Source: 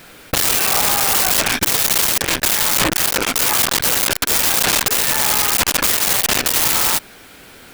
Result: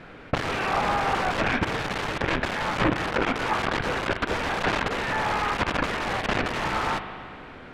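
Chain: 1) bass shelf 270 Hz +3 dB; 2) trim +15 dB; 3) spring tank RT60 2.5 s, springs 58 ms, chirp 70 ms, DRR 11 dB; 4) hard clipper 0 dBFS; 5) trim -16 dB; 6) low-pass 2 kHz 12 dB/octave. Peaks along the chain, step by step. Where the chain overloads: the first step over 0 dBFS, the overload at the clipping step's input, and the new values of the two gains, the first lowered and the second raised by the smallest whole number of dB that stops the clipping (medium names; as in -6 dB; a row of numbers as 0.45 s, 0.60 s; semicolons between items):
-7.0 dBFS, +8.0 dBFS, +8.0 dBFS, 0.0 dBFS, -16.0 dBFS, -15.0 dBFS; step 2, 8.0 dB; step 2 +7 dB, step 5 -8 dB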